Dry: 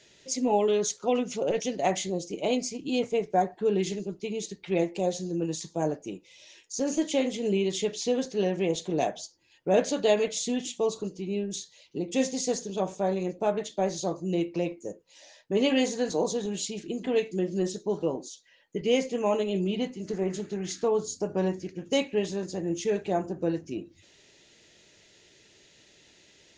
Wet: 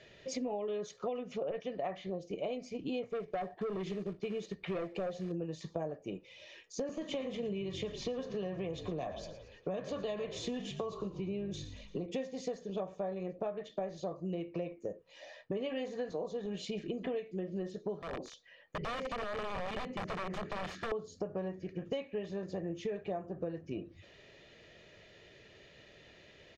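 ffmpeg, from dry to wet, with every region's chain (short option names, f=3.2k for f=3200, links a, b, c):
-filter_complex "[0:a]asettb=1/sr,asplit=3[a][b][c];[a]atrim=end=1.424[d];[b]atrim=start=1.42:end=2.21,asetpts=PTS-STARTPTS,afade=t=in:d=0.004:c=qsin,afade=t=out:st=0.786:d=0.004:c=qsin,lowpass=4.2k,equalizer=f=1.2k:w=1.8:g=5.5[e];[c]atrim=start=2.206[f];[d][e]acrossfade=d=0.004:c1=hsin:c2=qsin[g];[g][f]acrossfade=d=0.004:c1=qsin:c2=hsin,asettb=1/sr,asplit=3[h][i][j];[h]atrim=end=3.104[k];[i]atrim=start=3.1:end=5.32,asetpts=PTS-STARTPTS,afade=t=in:d=0.004:c=qsin,afade=t=out:st=2.216:d=0.004:c=qsin,acrusher=bits=4:mode=log:mix=0:aa=0.000001,asoftclip=type=hard:threshold=-25dB[l];[j]atrim=start=5.316[m];[k][l]acrossfade=d=0.004:c1=hsin:c2=qsin[n];[n][m]acrossfade=d=0.004:c1=qsin:c2=hsin,asettb=1/sr,asplit=3[o][p][q];[o]atrim=end=6.894[r];[p]atrim=start=6.89:end=12.06,asetpts=PTS-STARTPTS,afade=t=in:d=0.004:c=qsin,afade=t=out:st=5.166:d=0.004:c=qsin,equalizer=f=1.1k:t=o:w=0.38:g=9.5,acrossover=split=220|3000[s][t][u];[t]acompressor=threshold=-32dB:ratio=2.5:attack=3.2:release=140:knee=2.83:detection=peak[v];[s][v][u]amix=inputs=3:normalize=0,asplit=6[w][x][y][z][aa][ab];[x]adelay=114,afreqshift=-50,volume=-14.5dB[ac];[y]adelay=228,afreqshift=-100,volume=-20.2dB[ad];[z]adelay=342,afreqshift=-150,volume=-25.9dB[ae];[aa]adelay=456,afreqshift=-200,volume=-31.5dB[af];[ab]adelay=570,afreqshift=-250,volume=-37.2dB[ag];[w][ac][ad][ae][af][ag]amix=inputs=6:normalize=0,atrim=end_sample=227997[ah];[q]atrim=start=12.056[ai];[r][ah]acrossfade=d=0.004:c1=hsin:c2=qsin[aj];[aj][ai]acrossfade=d=0.004:c1=qsin:c2=hsin,asettb=1/sr,asplit=3[ak][al][am];[ak]atrim=end=18.024[an];[al]atrim=start=18.02:end=20.92,asetpts=PTS-STARTPTS,afade=t=in:d=0.004:c=qsin,afade=t=out:st=2.896:d=0.004:c=qsin,acompressor=threshold=-33dB:ratio=16:attack=3.2:release=140:knee=1:detection=peak,aeval=exprs='(mod(44.7*val(0)+1,2)-1)/44.7':c=same[ao];[am]atrim=start=20.916[ap];[an][ao]acrossfade=d=0.004:c1=hsin:c2=qsin[aq];[aq][ap]acrossfade=d=0.004:c1=qsin:c2=hsin,lowpass=2.5k,aecho=1:1:1.7:0.39,acompressor=threshold=-38dB:ratio=10,volume=3.5dB"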